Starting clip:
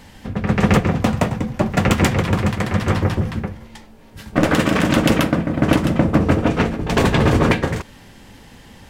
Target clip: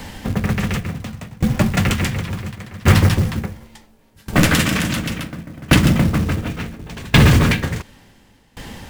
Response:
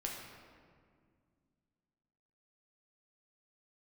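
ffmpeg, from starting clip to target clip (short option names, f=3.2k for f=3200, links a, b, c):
-filter_complex "[0:a]asettb=1/sr,asplit=3[a][b][c];[a]atrim=end=2.954[d];[b]atrim=start=2.95:end=4.99,asetpts=PTS-STARTPTS,afade=t=in:d=0.004:c=qsin,afade=t=out:st=2.036:d=0.004:c=qsin,highshelf=f=6.3k:g=7[e];[c]atrim=start=4.986[f];[d][e]acrossfade=d=0.004:c1=hsin:c2=qsin[g];[g][f]acrossfade=d=0.004:c1=qsin:c2=hsin,acrossover=split=220|1500|3900[h][i][j][k];[i]acompressor=threshold=-31dB:ratio=4[l];[h][l][j][k]amix=inputs=4:normalize=0,apsyclip=13.5dB,acrusher=bits=5:mode=log:mix=0:aa=0.000001,aeval=exprs='val(0)*pow(10,-25*if(lt(mod(0.7*n/s,1),2*abs(0.7)/1000),1-mod(0.7*n/s,1)/(2*abs(0.7)/1000),(mod(0.7*n/s,1)-2*abs(0.7)/1000)/(1-2*abs(0.7)/1000))/20)':c=same,volume=-2.5dB"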